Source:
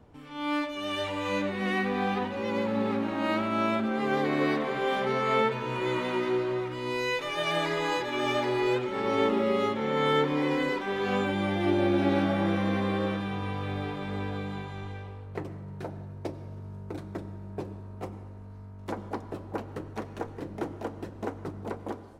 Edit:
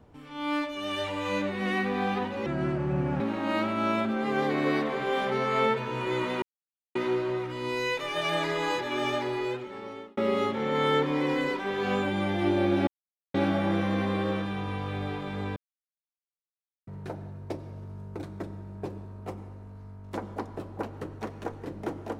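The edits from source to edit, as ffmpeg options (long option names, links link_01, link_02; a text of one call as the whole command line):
ffmpeg -i in.wav -filter_complex "[0:a]asplit=8[link_01][link_02][link_03][link_04][link_05][link_06][link_07][link_08];[link_01]atrim=end=2.464[link_09];[link_02]atrim=start=2.46:end=2.95,asetpts=PTS-STARTPTS,asetrate=29106,aresample=44100[link_10];[link_03]atrim=start=2.946:end=6.17,asetpts=PTS-STARTPTS,afade=type=out:start_time=3.22:duration=0.004:curve=hsin,apad=pad_dur=0.53[link_11];[link_04]atrim=start=6.17:end=9.39,asetpts=PTS-STARTPTS,afade=type=in:duration=0.004:curve=hsin,afade=type=out:start_time=2:duration=1.22[link_12];[link_05]atrim=start=9.39:end=12.09,asetpts=PTS-STARTPTS,afade=type=in:duration=0.004:curve=hsin,afade=type=out:start_time=2.696:duration=0.004:curve=hsin,apad=pad_dur=0.47[link_13];[link_06]atrim=start=12.09:end=14.31,asetpts=PTS-STARTPTS,afade=type=in:duration=0.004:curve=hsin,afade=type=out:start_time=2.216:duration=0.004:curve=hsin[link_14];[link_07]atrim=start=14.31:end=15.62,asetpts=PTS-STARTPTS,volume=0[link_15];[link_08]atrim=start=15.62,asetpts=PTS-STARTPTS,afade=type=in:duration=0.004:curve=hsin[link_16];[link_09][link_10]acrossfade=duration=0.004:curve1=hsin:curve2=hsin[link_17];[link_11][link_12][link_13][link_14][link_15][link_16]concat=n=6:v=0:a=1[link_18];[link_17][link_18]acrossfade=duration=0.004:curve1=hsin:curve2=hsin" out.wav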